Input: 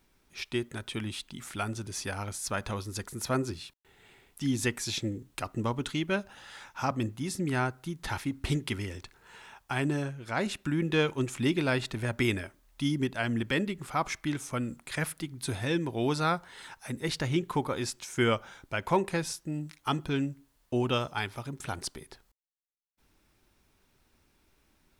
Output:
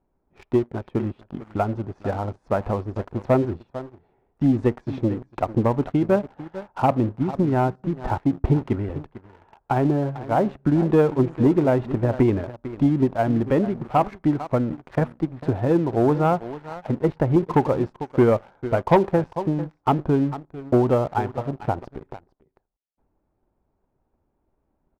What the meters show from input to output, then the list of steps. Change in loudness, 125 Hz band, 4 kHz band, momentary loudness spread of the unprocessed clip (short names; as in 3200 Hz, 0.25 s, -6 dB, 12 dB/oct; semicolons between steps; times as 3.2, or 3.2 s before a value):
+9.0 dB, +9.5 dB, n/a, 11 LU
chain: transient shaper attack +6 dB, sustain +2 dB; synth low-pass 750 Hz, resonance Q 1.5; on a send: echo 0.448 s -15 dB; on the sum: sample leveller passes 2